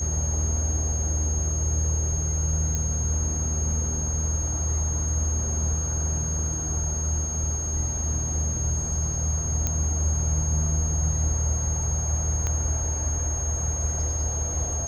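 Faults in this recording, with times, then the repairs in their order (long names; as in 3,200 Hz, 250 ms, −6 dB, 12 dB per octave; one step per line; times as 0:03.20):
whistle 6,500 Hz −29 dBFS
0:02.75: click −14 dBFS
0:09.67: click −11 dBFS
0:12.47: click −15 dBFS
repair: click removal
notch filter 6,500 Hz, Q 30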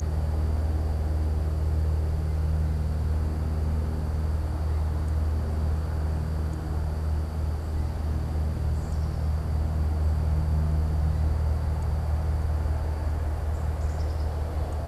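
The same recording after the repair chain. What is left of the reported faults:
0:09.67: click
0:12.47: click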